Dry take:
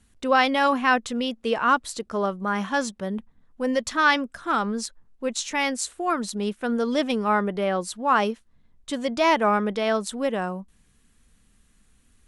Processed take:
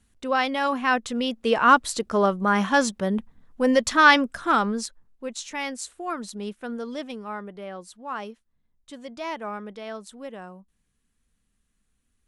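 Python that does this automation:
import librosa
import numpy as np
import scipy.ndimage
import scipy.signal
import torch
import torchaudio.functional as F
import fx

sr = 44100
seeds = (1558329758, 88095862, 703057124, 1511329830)

y = fx.gain(x, sr, db=fx.line((0.64, -4.0), (1.74, 4.5), (4.42, 4.5), (5.28, -6.0), (6.51, -6.0), (7.32, -12.5)))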